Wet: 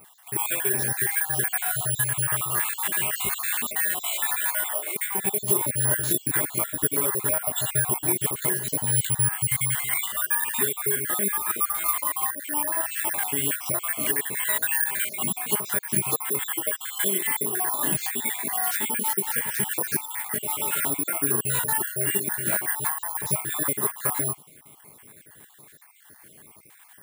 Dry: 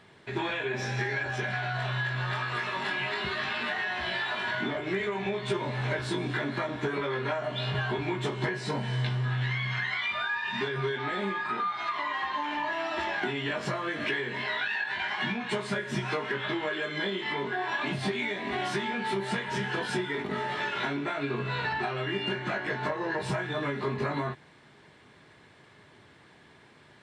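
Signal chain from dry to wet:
time-frequency cells dropped at random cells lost 47%
0:04.07–0:04.96: high-pass filter 540 Hz 24 dB per octave
0:12.02–0:12.92: parametric band 3,900 Hz −5 dB 0.77 octaves
bad sample-rate conversion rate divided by 4×, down none, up zero stuff
level +2 dB

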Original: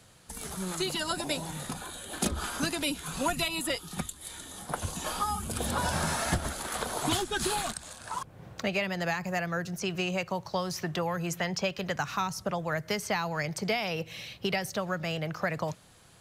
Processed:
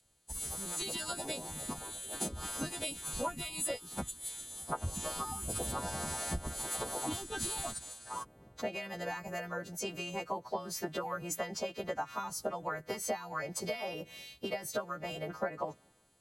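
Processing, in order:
every partial snapped to a pitch grid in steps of 2 semitones
harmonic and percussive parts rebalanced harmonic −14 dB
downward compressor 16 to 1, threshold −39 dBFS, peak gain reduction 13 dB
notch filter 5,300 Hz, Q 6
multiband upward and downward expander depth 70%
level +6.5 dB

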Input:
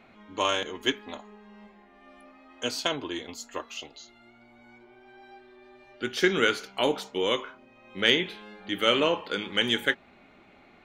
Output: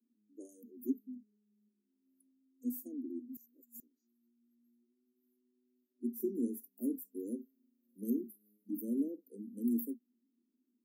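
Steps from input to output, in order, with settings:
Butterworth high-pass 230 Hz 96 dB per octave
noise reduction from a noise print of the clip's start 17 dB
inverse Chebyshev band-stop filter 910–3,800 Hz, stop band 80 dB
0:03.37–0:03.80: reverse
0:06.80–0:08.71: one half of a high-frequency compander encoder only
level +11.5 dB

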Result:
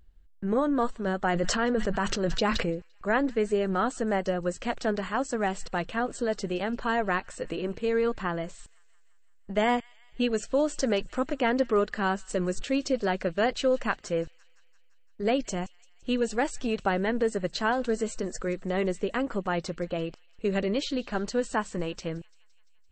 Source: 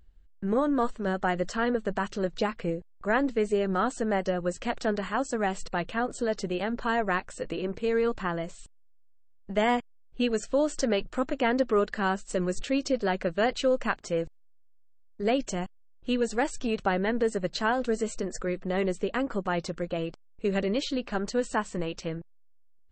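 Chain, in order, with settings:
delay with a high-pass on its return 171 ms, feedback 63%, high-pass 2,200 Hz, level −21.5 dB
0:01.25–0:02.70: level that may fall only so fast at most 21 dB per second

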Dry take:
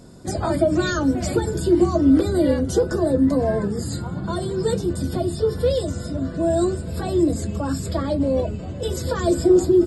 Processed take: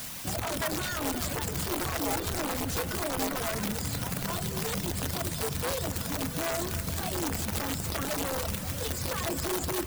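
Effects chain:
bit-depth reduction 6 bits, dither triangular
parametric band 380 Hz −11 dB 0.53 octaves
brickwall limiter −19.5 dBFS, peak gain reduction 10.5 dB
wrap-around overflow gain 21.5 dB
echo with a time of its own for lows and highs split 920 Hz, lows 87 ms, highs 257 ms, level −13.5 dB
reverb reduction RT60 0.63 s
convolution reverb RT60 5.8 s, pre-delay 44 ms, DRR 10.5 dB
level −2.5 dB

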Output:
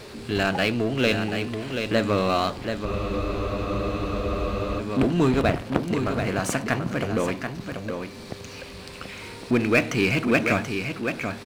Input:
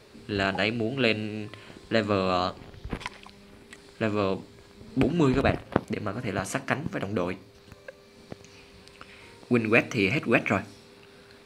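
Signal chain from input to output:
single-tap delay 733 ms −9.5 dB
power curve on the samples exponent 0.7
frozen spectrum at 0:02.87, 1.93 s
level −2 dB

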